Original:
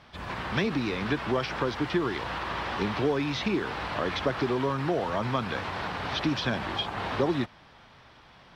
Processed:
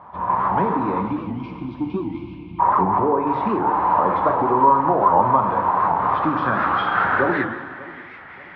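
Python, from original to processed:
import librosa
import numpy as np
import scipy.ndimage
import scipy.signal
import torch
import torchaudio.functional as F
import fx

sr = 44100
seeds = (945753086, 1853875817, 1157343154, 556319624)

p1 = fx.envelope_sharpen(x, sr, power=1.5, at=(2.34, 3.27))
p2 = fx.highpass(p1, sr, hz=110.0, slope=6)
p3 = fx.spec_erase(p2, sr, start_s=1.01, length_s=1.58, low_hz=350.0, high_hz=2100.0)
p4 = fx.peak_eq(p3, sr, hz=4900.0, db=8.0, octaves=2.3, at=(6.59, 7.04))
p5 = np.clip(10.0 ** (30.5 / 20.0) * p4, -1.0, 1.0) / 10.0 ** (30.5 / 20.0)
p6 = p4 + (p5 * 10.0 ** (-8.0 / 20.0))
p7 = fx.filter_sweep_lowpass(p6, sr, from_hz=980.0, to_hz=2000.0, start_s=5.81, end_s=8.08, q=6.3)
p8 = p7 + fx.echo_feedback(p7, sr, ms=586, feedback_pct=40, wet_db=-20.0, dry=0)
p9 = fx.rev_double_slope(p8, sr, seeds[0], early_s=0.96, late_s=2.9, knee_db=-18, drr_db=2.5)
p10 = fx.record_warp(p9, sr, rpm=78.0, depth_cents=160.0)
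y = p10 * 10.0 ** (2.0 / 20.0)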